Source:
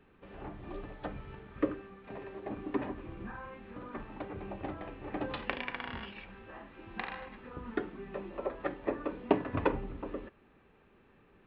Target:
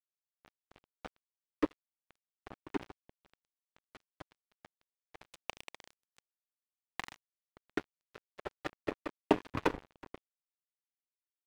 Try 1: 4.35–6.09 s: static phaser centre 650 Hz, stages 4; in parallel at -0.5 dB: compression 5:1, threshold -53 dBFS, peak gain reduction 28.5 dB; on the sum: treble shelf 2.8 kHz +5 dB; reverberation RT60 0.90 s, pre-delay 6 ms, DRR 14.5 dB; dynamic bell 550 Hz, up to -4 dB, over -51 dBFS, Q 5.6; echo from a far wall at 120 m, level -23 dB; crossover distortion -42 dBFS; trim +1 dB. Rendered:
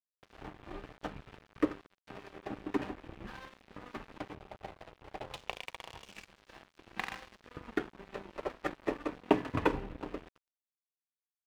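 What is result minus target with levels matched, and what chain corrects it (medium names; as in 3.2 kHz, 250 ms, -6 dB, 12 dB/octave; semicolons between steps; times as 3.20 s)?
crossover distortion: distortion -7 dB
4.35–6.09 s: static phaser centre 650 Hz, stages 4; in parallel at -0.5 dB: compression 5:1, threshold -53 dBFS, peak gain reduction 28.5 dB; on the sum: treble shelf 2.8 kHz +5 dB; reverberation RT60 0.90 s, pre-delay 6 ms, DRR 14.5 dB; dynamic bell 550 Hz, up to -4 dB, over -51 dBFS, Q 5.6; echo from a far wall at 120 m, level -23 dB; crossover distortion -32 dBFS; trim +1 dB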